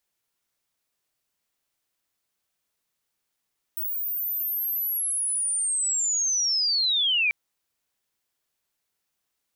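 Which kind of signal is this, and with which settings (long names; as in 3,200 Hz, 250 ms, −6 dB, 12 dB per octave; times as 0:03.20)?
glide linear 16,000 Hz → 2,300 Hz −26.5 dBFS → −19.5 dBFS 3.54 s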